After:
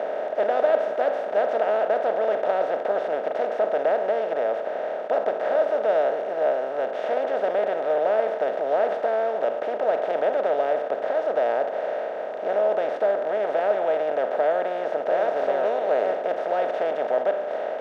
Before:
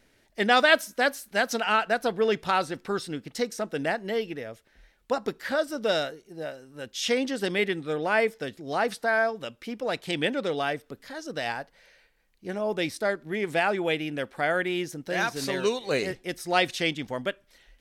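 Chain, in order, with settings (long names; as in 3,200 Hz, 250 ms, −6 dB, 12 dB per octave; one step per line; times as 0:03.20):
compressor on every frequency bin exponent 0.2
resonant band-pass 600 Hz, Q 4.2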